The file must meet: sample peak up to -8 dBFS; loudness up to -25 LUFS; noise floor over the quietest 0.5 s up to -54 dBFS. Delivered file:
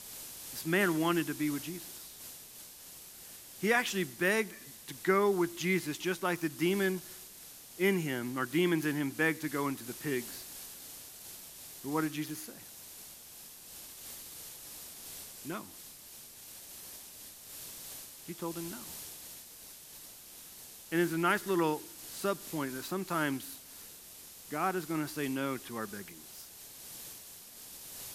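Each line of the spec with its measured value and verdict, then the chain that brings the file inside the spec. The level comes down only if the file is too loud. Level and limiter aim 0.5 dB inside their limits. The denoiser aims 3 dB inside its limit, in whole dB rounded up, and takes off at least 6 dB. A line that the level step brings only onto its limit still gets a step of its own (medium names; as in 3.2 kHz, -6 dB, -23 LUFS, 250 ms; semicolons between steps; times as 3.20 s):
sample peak -14.5 dBFS: pass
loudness -34.5 LUFS: pass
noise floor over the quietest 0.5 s -51 dBFS: fail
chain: noise reduction 6 dB, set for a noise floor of -51 dBFS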